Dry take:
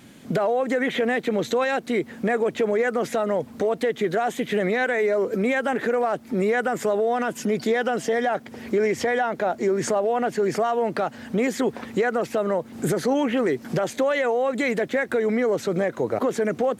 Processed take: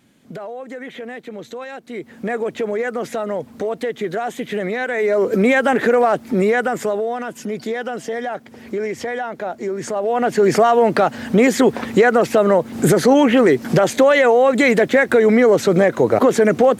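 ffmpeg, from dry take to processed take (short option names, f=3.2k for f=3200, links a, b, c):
-af "volume=19.5dB,afade=t=in:st=1.86:d=0.47:silence=0.354813,afade=t=in:st=4.87:d=0.51:silence=0.398107,afade=t=out:st=6.1:d=1.1:silence=0.316228,afade=t=in:st=9.9:d=0.63:silence=0.266073"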